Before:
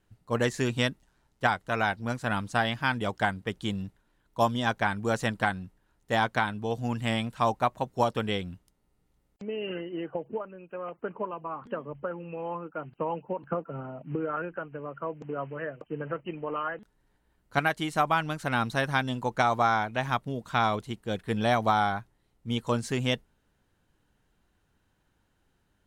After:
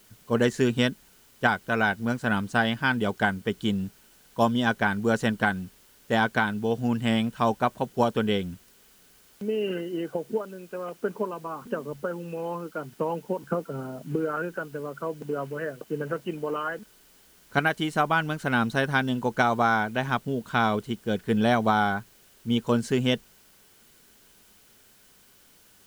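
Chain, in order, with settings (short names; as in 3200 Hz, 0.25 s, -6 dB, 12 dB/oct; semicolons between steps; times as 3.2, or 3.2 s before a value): added noise white -58 dBFS; small resonant body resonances 220/400/1500/3000 Hz, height 7 dB, ringing for 25 ms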